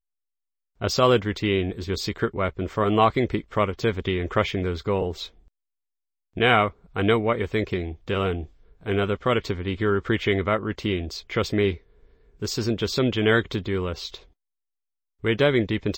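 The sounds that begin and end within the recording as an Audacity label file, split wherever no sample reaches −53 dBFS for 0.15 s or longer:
0.800000	5.480000	sound
6.350000	14.310000	sound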